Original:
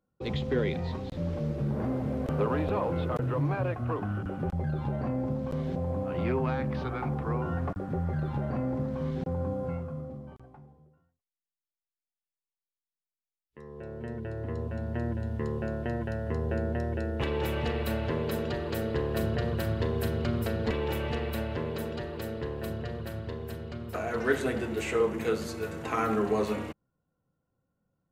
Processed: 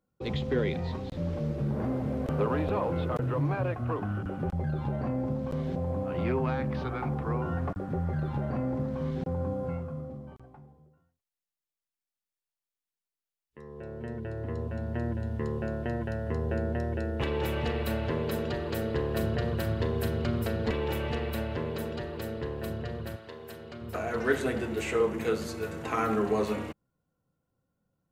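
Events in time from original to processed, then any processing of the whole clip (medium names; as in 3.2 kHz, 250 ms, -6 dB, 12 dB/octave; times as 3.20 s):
23.15–23.81 s: high-pass 940 Hz -> 250 Hz 6 dB/octave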